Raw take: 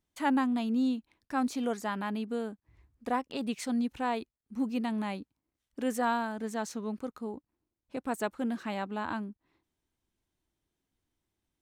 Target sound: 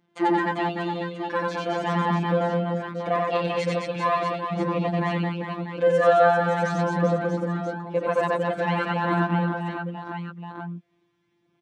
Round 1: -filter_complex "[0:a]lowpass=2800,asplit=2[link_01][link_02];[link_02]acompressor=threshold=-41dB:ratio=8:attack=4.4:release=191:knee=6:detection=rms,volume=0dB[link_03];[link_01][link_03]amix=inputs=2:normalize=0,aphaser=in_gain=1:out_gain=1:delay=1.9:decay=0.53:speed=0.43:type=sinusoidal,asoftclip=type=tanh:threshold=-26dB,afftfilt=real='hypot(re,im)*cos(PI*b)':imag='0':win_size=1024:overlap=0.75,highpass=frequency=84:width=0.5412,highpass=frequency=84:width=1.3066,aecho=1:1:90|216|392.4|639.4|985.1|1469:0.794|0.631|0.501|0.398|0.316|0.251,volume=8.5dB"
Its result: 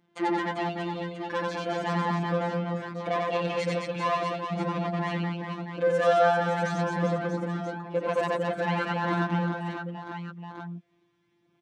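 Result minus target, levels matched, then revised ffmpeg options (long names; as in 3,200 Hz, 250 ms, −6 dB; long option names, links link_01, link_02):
soft clipping: distortion +11 dB; downward compressor: peak gain reduction +5.5 dB
-filter_complex "[0:a]lowpass=2800,asplit=2[link_01][link_02];[link_02]acompressor=threshold=-34.5dB:ratio=8:attack=4.4:release=191:knee=6:detection=rms,volume=0dB[link_03];[link_01][link_03]amix=inputs=2:normalize=0,aphaser=in_gain=1:out_gain=1:delay=1.9:decay=0.53:speed=0.43:type=sinusoidal,asoftclip=type=tanh:threshold=-16dB,afftfilt=real='hypot(re,im)*cos(PI*b)':imag='0':win_size=1024:overlap=0.75,highpass=frequency=84:width=0.5412,highpass=frequency=84:width=1.3066,aecho=1:1:90|216|392.4|639.4|985.1|1469:0.794|0.631|0.501|0.398|0.316|0.251,volume=8.5dB"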